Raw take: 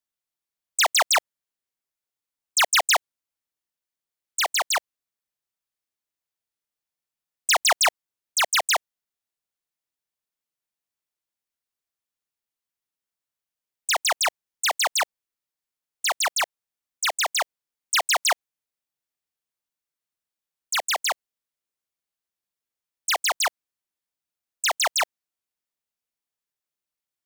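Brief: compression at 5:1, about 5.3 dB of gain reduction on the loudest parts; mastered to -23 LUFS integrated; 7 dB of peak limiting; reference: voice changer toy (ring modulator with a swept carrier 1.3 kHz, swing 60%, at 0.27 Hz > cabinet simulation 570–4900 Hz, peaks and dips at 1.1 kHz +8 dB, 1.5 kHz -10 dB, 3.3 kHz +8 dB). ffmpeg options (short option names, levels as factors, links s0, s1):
-af "acompressor=threshold=0.0631:ratio=5,alimiter=limit=0.0631:level=0:latency=1,aeval=exprs='val(0)*sin(2*PI*1300*n/s+1300*0.6/0.27*sin(2*PI*0.27*n/s))':c=same,highpass=570,equalizer=f=1100:t=q:w=4:g=8,equalizer=f=1500:t=q:w=4:g=-10,equalizer=f=3300:t=q:w=4:g=8,lowpass=f=4900:w=0.5412,lowpass=f=4900:w=1.3066,volume=2.24"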